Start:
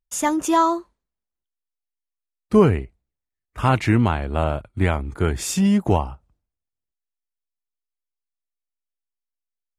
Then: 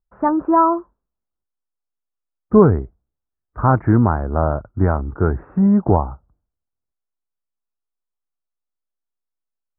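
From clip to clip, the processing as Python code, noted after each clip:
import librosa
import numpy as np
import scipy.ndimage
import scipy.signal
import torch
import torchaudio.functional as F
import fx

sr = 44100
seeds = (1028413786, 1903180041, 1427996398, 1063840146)

y = scipy.signal.sosfilt(scipy.signal.butter(8, 1500.0, 'lowpass', fs=sr, output='sos'), x)
y = y * librosa.db_to_amplitude(3.5)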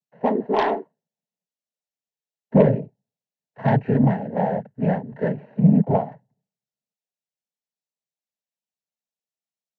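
y = fx.noise_vocoder(x, sr, seeds[0], bands=12)
y = fx.cheby_harmonics(y, sr, harmonics=(5,), levels_db=(-20,), full_scale_db=1.5)
y = fx.fixed_phaser(y, sr, hz=330.0, stages=6)
y = y * librosa.db_to_amplitude(-2.0)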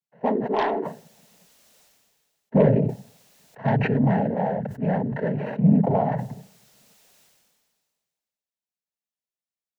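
y = fx.sustainer(x, sr, db_per_s=31.0)
y = y * librosa.db_to_amplitude(-3.5)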